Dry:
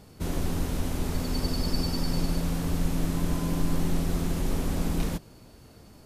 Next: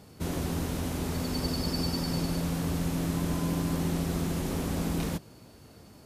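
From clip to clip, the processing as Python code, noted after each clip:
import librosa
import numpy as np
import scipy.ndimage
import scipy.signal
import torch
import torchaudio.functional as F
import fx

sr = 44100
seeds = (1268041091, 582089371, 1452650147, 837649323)

y = scipy.signal.sosfilt(scipy.signal.butter(2, 69.0, 'highpass', fs=sr, output='sos'), x)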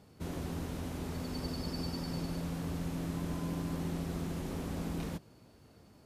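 y = fx.high_shelf(x, sr, hz=4800.0, db=-5.5)
y = F.gain(torch.from_numpy(y), -7.0).numpy()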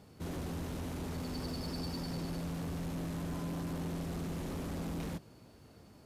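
y = 10.0 ** (-35.5 / 20.0) * np.tanh(x / 10.0 ** (-35.5 / 20.0))
y = F.gain(torch.from_numpy(y), 2.0).numpy()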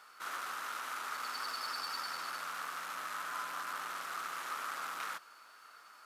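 y = fx.highpass_res(x, sr, hz=1300.0, q=5.3)
y = F.gain(torch.from_numpy(y), 4.0).numpy()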